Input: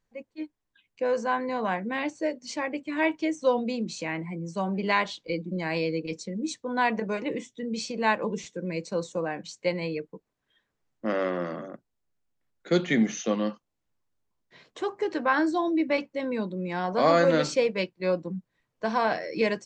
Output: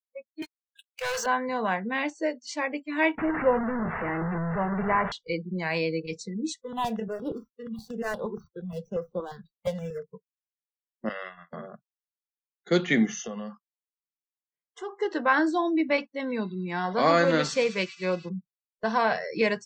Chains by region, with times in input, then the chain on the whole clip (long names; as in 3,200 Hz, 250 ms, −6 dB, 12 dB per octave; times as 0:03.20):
0:00.42–0:01.26: Bessel high-pass filter 1,600 Hz + leveller curve on the samples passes 5
0:03.18–0:05.12: linear delta modulator 16 kbit/s, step −22.5 dBFS + low-pass filter 1,700 Hz 24 dB per octave
0:06.61–0:10.09: running median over 25 samples + step-sequenced phaser 8.5 Hz 210–6,800 Hz
0:11.09–0:11.53: noise gate −28 dBFS, range −32 dB + parametric band 2,500 Hz +15 dB 2.8 octaves + downward compressor 2.5 to 1, threshold −40 dBFS
0:13.05–0:14.97: notch filter 3,900 Hz, Q 5.8 + downward compressor 4 to 1, threshold −31 dBFS
0:16.11–0:18.29: parametric band 580 Hz −4 dB 0.37 octaves + delay with a high-pass on its return 103 ms, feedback 75%, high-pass 2,600 Hz, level −12 dB
whole clip: noise gate −46 dBFS, range −19 dB; noise reduction from a noise print of the clip's start 28 dB; dynamic equaliser 2,000 Hz, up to +3 dB, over −38 dBFS, Q 0.74